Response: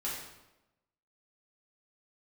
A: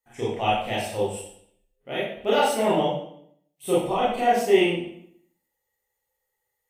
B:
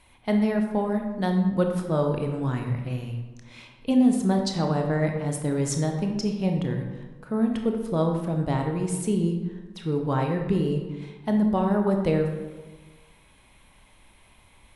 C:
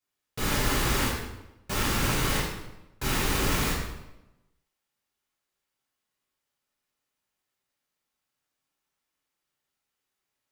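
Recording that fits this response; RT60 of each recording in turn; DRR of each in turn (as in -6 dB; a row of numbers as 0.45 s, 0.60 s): C; 0.65 s, 1.3 s, 1.0 s; -9.0 dB, 3.0 dB, -8.0 dB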